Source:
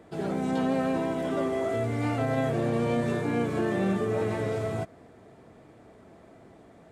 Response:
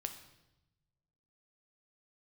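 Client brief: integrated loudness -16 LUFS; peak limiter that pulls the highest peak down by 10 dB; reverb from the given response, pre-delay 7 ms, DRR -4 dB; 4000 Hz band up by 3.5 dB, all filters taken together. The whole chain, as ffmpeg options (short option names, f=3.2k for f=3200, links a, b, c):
-filter_complex "[0:a]equalizer=f=4k:t=o:g=4.5,alimiter=level_in=2.5dB:limit=-24dB:level=0:latency=1,volume=-2.5dB,asplit=2[a][b];[1:a]atrim=start_sample=2205,adelay=7[c];[b][c]afir=irnorm=-1:irlink=0,volume=5.5dB[d];[a][d]amix=inputs=2:normalize=0,volume=12.5dB"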